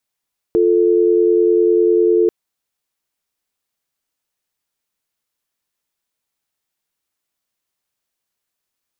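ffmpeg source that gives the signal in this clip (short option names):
-f lavfi -i "aevalsrc='0.224*(sin(2*PI*350*t)+sin(2*PI*440*t))':d=1.74:s=44100"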